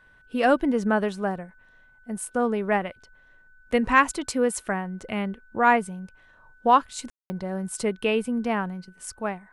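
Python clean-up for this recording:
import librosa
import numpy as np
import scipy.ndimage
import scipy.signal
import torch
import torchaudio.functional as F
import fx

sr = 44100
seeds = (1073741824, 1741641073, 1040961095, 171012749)

y = fx.notch(x, sr, hz=1500.0, q=30.0)
y = fx.fix_ambience(y, sr, seeds[0], print_start_s=1.51, print_end_s=2.01, start_s=7.1, end_s=7.3)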